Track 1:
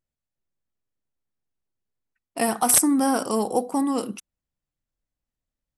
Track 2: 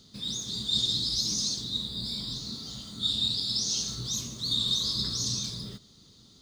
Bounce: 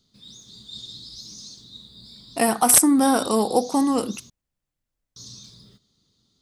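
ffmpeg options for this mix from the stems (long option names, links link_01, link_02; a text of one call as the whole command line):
ffmpeg -i stem1.wav -i stem2.wav -filter_complex "[0:a]volume=3dB[link_01];[1:a]volume=-11.5dB,asplit=3[link_02][link_03][link_04];[link_02]atrim=end=4.3,asetpts=PTS-STARTPTS,afade=type=out:start_time=4.296:duration=0.004:curve=hsin[link_05];[link_03]atrim=start=4.3:end=5.16,asetpts=PTS-STARTPTS,volume=0[link_06];[link_04]atrim=start=5.16,asetpts=PTS-STARTPTS,afade=type=in:duration=0.004:curve=hsin[link_07];[link_05][link_06][link_07]concat=n=3:v=0:a=1[link_08];[link_01][link_08]amix=inputs=2:normalize=0" out.wav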